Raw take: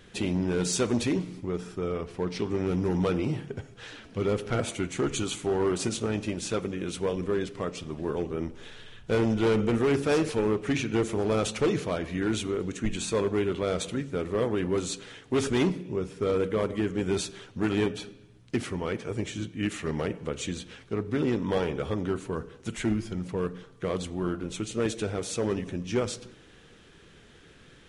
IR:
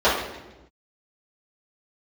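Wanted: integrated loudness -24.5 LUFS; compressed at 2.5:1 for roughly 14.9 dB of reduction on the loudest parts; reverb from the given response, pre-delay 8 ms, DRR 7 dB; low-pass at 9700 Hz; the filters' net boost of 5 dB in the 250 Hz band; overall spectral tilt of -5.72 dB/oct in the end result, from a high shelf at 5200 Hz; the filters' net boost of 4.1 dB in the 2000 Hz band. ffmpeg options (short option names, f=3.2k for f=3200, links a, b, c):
-filter_complex "[0:a]lowpass=9.7k,equalizer=f=250:t=o:g=6.5,equalizer=f=2k:t=o:g=6.5,highshelf=f=5.2k:g=-8.5,acompressor=threshold=-41dB:ratio=2.5,asplit=2[a][b];[1:a]atrim=start_sample=2205,adelay=8[c];[b][c]afir=irnorm=-1:irlink=0,volume=-29dB[d];[a][d]amix=inputs=2:normalize=0,volume=14dB"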